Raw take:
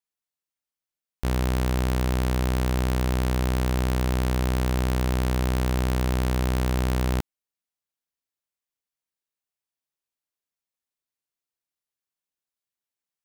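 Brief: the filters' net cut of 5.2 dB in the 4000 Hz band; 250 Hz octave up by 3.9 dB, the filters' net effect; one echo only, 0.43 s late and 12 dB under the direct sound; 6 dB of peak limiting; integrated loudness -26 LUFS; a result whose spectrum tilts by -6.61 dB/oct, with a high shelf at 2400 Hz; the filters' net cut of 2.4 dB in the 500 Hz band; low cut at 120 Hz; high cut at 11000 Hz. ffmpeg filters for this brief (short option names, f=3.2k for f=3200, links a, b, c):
-af "highpass=120,lowpass=11k,equalizer=f=250:t=o:g=7,equalizer=f=500:t=o:g=-5.5,highshelf=f=2.4k:g=-3,equalizer=f=4k:t=o:g=-4,alimiter=limit=-20.5dB:level=0:latency=1,aecho=1:1:430:0.251,volume=7.5dB"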